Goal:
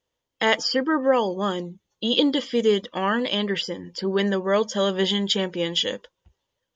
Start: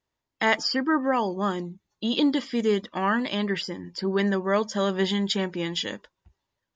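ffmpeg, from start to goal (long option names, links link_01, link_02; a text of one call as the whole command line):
ffmpeg -i in.wav -af "equalizer=frequency=500:width_type=o:width=0.33:gain=11,equalizer=frequency=3150:width_type=o:width=0.33:gain=9,equalizer=frequency=6300:width_type=o:width=0.33:gain=5" out.wav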